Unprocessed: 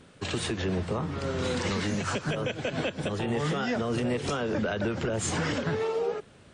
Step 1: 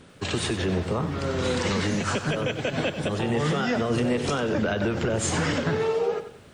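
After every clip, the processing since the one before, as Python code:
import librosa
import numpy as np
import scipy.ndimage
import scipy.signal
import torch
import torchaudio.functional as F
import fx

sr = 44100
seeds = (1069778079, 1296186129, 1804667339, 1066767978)

y = fx.echo_crushed(x, sr, ms=94, feedback_pct=35, bits=10, wet_db=-11.0)
y = y * librosa.db_to_amplitude(3.5)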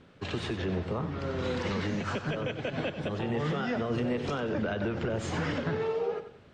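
y = fx.air_absorb(x, sr, metres=140.0)
y = y * librosa.db_to_amplitude(-5.5)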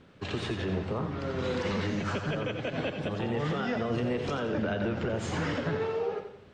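y = fx.echo_feedback(x, sr, ms=84, feedback_pct=44, wet_db=-9.5)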